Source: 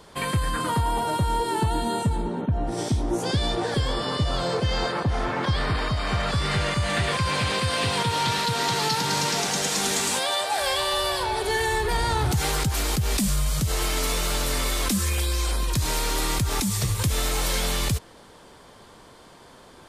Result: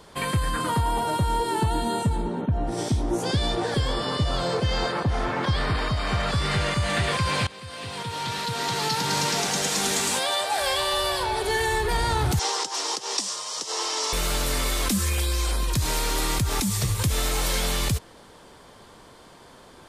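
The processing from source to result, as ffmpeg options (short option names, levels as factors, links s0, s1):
-filter_complex "[0:a]asettb=1/sr,asplit=3[s0][s1][s2];[s0]atrim=end=12.394[s3];[s1]atrim=start=12.39:end=14.13,asetpts=PTS-STARTPTS,afade=t=in:d=0.004:c=qsin,afade=t=out:st=1.736:d=0.004:c=qsin,highpass=f=390:w=0.5412,highpass=f=390:w=1.3066,equalizer=f=620:t=q:w=4:g=-5,equalizer=f=960:t=q:w=4:g=7,equalizer=f=1500:t=q:w=4:g=-6,equalizer=f=2300:t=q:w=4:g=-7,equalizer=f=5500:t=q:w=4:g=9,lowpass=f=8000:w=0.5412,lowpass=f=8000:w=1.3066[s4];[s2]atrim=start=14.126[s5];[s3][s4]acrossfade=d=0.004:c1=hsin:c2=qsin[s6];[s6][s5]acrossfade=d=0.004:c1=qsin:c2=hsin,asplit=2[s7][s8];[s7]atrim=end=7.47,asetpts=PTS-STARTPTS,afade=t=out:st=7.466:d=0.004:c=hsin:silence=0.0944061[s9];[s8]atrim=start=7.47,asetpts=PTS-STARTPTS,afade=t=in:d=1.72:silence=0.0944061[s10];[s9][s10]concat=n=2:v=0:a=1"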